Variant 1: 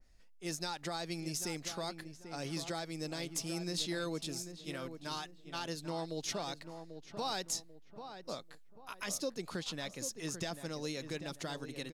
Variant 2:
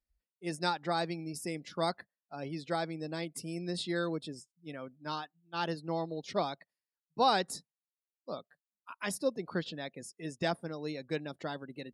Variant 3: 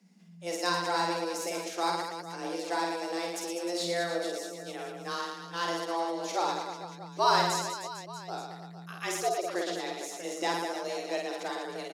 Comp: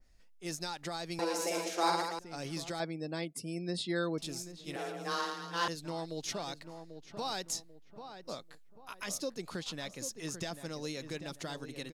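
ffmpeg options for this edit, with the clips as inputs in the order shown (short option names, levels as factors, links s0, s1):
-filter_complex "[2:a]asplit=2[s0][s1];[0:a]asplit=4[s2][s3][s4][s5];[s2]atrim=end=1.192[s6];[s0]atrim=start=1.188:end=2.192[s7];[s3]atrim=start=2.188:end=2.802[s8];[1:a]atrim=start=2.798:end=4.182[s9];[s4]atrim=start=4.178:end=4.762[s10];[s1]atrim=start=4.758:end=5.682[s11];[s5]atrim=start=5.678[s12];[s6][s7]acrossfade=d=0.004:c1=hsin:c2=hsin[s13];[s13][s8]acrossfade=d=0.004:c1=hsin:c2=hsin[s14];[s14][s9]acrossfade=d=0.004:c1=hsin:c2=hsin[s15];[s15][s10]acrossfade=d=0.004:c1=hsin:c2=hsin[s16];[s16][s11]acrossfade=d=0.004:c1=hsin:c2=hsin[s17];[s17][s12]acrossfade=d=0.004:c1=hsin:c2=hsin"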